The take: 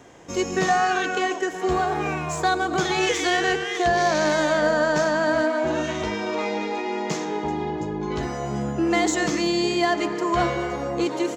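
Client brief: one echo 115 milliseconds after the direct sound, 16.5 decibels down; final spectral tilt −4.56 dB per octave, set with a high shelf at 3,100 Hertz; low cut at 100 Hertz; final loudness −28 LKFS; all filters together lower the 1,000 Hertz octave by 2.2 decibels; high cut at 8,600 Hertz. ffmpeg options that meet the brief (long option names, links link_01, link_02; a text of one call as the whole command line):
ffmpeg -i in.wav -af "highpass=100,lowpass=8600,equalizer=frequency=1000:width_type=o:gain=-3,highshelf=frequency=3100:gain=-3,aecho=1:1:115:0.15,volume=-3.5dB" out.wav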